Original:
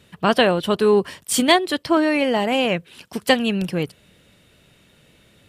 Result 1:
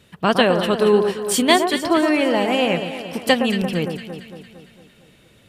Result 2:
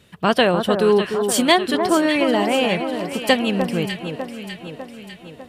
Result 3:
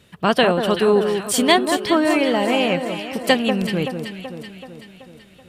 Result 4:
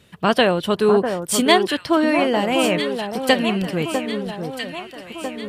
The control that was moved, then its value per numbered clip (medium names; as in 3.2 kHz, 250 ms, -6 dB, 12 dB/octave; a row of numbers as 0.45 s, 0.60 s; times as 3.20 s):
echo whose repeats swap between lows and highs, time: 114 ms, 300 ms, 190 ms, 649 ms